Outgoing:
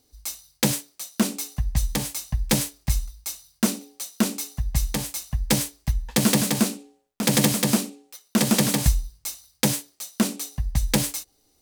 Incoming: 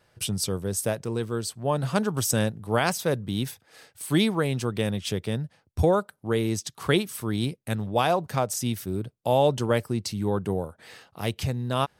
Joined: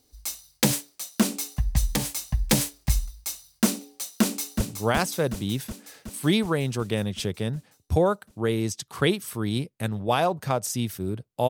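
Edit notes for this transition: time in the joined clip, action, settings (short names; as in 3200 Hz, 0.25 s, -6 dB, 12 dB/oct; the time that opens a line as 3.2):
outgoing
4.2–4.61 echo throw 0.37 s, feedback 70%, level -7 dB
4.61 switch to incoming from 2.48 s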